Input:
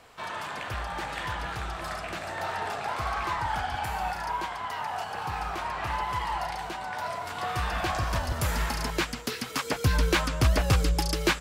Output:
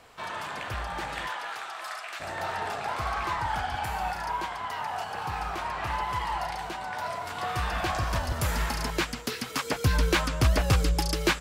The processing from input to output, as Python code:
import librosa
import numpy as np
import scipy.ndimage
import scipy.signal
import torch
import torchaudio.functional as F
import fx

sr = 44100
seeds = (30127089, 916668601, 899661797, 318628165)

y = fx.highpass(x, sr, hz=fx.line((1.26, 490.0), (2.19, 1100.0)), slope=12, at=(1.26, 2.19), fade=0.02)